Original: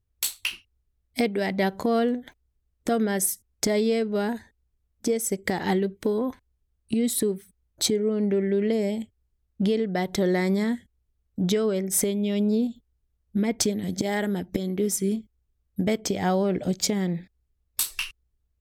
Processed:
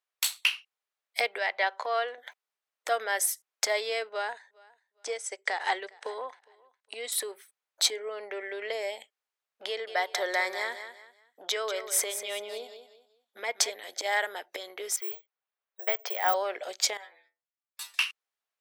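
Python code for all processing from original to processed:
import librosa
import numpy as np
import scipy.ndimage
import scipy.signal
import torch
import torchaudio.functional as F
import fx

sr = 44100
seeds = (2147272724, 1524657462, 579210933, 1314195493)

y = fx.chain(x, sr, fx.highpass(hz=480.0, slope=6),
    fx.air_absorb(metres=91.0), at=(1.38, 2.18))
y = fx.chain(y, sr, fx.steep_lowpass(hz=9600.0, slope=48),
    fx.echo_feedback(ms=410, feedback_pct=30, wet_db=-21.5),
    fx.upward_expand(threshold_db=-32.0, expansion=1.5), at=(4.09, 7.12))
y = fx.chain(y, sr, fx.notch(hz=2700.0, q=22.0),
    fx.echo_feedback(ms=191, feedback_pct=30, wet_db=-10), at=(9.68, 13.72))
y = fx.chain(y, sr, fx.highpass(hz=350.0, slope=24),
    fx.air_absorb(metres=190.0),
    fx.resample_bad(factor=2, down='none', up='zero_stuff'), at=(14.96, 16.34))
y = fx.chain(y, sr, fx.lowpass(hz=1300.0, slope=6),
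    fx.tilt_eq(slope=3.5),
    fx.stiff_resonator(f0_hz=79.0, decay_s=0.37, stiffness=0.002), at=(16.97, 17.94))
y = scipy.signal.sosfilt(scipy.signal.bessel(6, 950.0, 'highpass', norm='mag', fs=sr, output='sos'), y)
y = fx.high_shelf(y, sr, hz=4800.0, db=-11.0)
y = F.gain(torch.from_numpy(y), 6.5).numpy()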